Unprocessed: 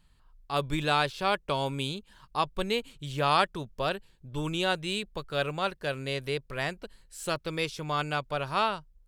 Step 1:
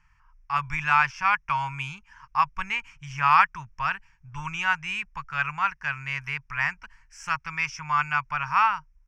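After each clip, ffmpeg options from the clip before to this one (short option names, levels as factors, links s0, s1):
-af "firequalizer=gain_entry='entry(130,0);entry(280,-22);entry(510,-27);entry(910,8);entry(2400,10);entry(3900,-22);entry(5500,10);entry(8000,-12);entry(11000,-18)':delay=0.05:min_phase=1"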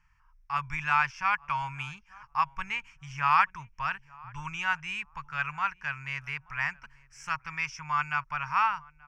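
-filter_complex "[0:a]asplit=2[s0][s1];[s1]adelay=880,lowpass=f=1200:p=1,volume=0.0794,asplit=2[s2][s3];[s3]adelay=880,lowpass=f=1200:p=1,volume=0.2[s4];[s0][s2][s4]amix=inputs=3:normalize=0,volume=0.596"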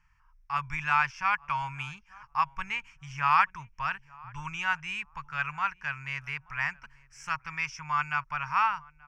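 -af anull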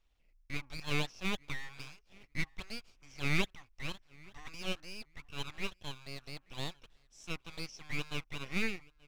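-filter_complex "[0:a]equalizer=f=120:w=2.7:g=-9,acrossover=split=110|3100[s0][s1][s2];[s1]aeval=exprs='abs(val(0))':c=same[s3];[s0][s3][s2]amix=inputs=3:normalize=0,volume=0.501"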